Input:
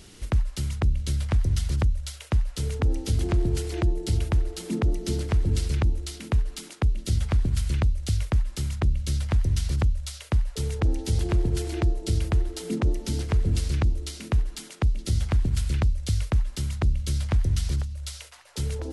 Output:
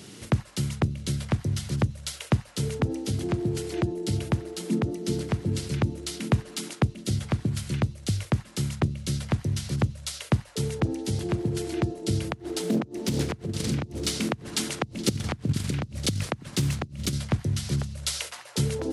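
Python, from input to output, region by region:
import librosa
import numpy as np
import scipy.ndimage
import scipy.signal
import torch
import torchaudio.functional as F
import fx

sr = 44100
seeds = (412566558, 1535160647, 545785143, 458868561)

y = fx.chain(x, sr, fx.over_compress(threshold_db=-27.0, ratio=-0.5),
    fx.echo_single(ms=969, db=-16.0),
    fx.doppler_dist(depth_ms=0.52), at=(12.32, 17.13))
y = scipy.signal.sosfilt(scipy.signal.butter(4, 120.0, 'highpass', fs=sr, output='sos'), y)
y = fx.low_shelf(y, sr, hz=340.0, db=5.5)
y = fx.rider(y, sr, range_db=10, speed_s=0.5)
y = y * 10.0 ** (1.5 / 20.0)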